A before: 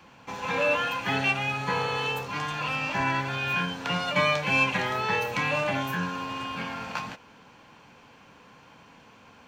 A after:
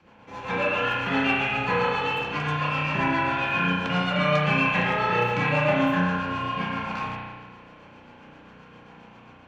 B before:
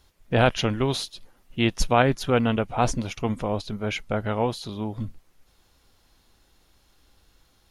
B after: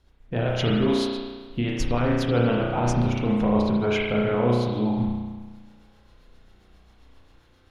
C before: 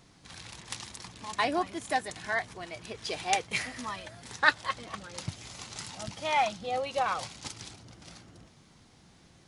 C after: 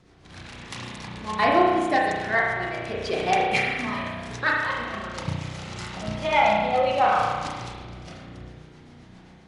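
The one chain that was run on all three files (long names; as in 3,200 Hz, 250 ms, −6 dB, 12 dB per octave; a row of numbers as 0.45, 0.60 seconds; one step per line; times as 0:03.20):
low-pass filter 2,800 Hz 6 dB per octave
brickwall limiter −18 dBFS
automatic gain control gain up to 4.5 dB
rotating-speaker cabinet horn 7.5 Hz
spring reverb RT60 1.4 s, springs 33 ms, chirp 50 ms, DRR −3 dB
loudness normalisation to −24 LKFS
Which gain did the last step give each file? −1.5, 0.0, +4.0 decibels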